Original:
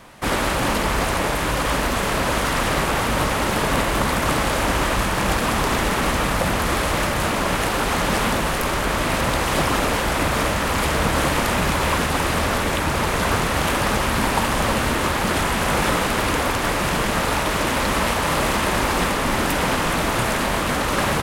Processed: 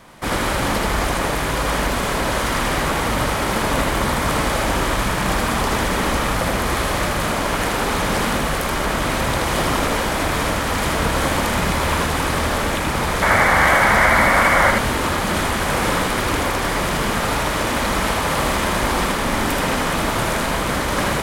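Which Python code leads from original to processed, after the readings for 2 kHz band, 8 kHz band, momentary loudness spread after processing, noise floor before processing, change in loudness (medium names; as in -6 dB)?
+3.0 dB, +0.5 dB, 7 LU, -22 dBFS, +1.5 dB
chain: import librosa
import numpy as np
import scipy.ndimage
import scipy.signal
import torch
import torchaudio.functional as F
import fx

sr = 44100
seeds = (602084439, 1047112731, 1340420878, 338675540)

y = fx.notch(x, sr, hz=2700.0, q=22.0)
y = fx.spec_paint(y, sr, seeds[0], shape='noise', start_s=13.22, length_s=1.49, low_hz=500.0, high_hz=2300.0, level_db=-16.0)
y = y + 10.0 ** (-3.5 / 20.0) * np.pad(y, (int(79 * sr / 1000.0), 0))[:len(y)]
y = y * librosa.db_to_amplitude(-1.0)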